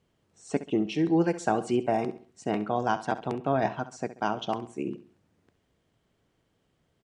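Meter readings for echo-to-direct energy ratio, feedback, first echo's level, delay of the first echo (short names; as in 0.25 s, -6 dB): -13.5 dB, 37%, -14.0 dB, 67 ms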